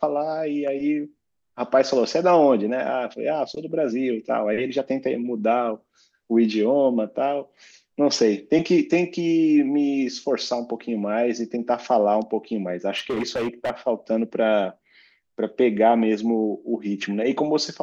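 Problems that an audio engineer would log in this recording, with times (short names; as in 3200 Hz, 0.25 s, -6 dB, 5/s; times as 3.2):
12.97–13.71 clipped -21.5 dBFS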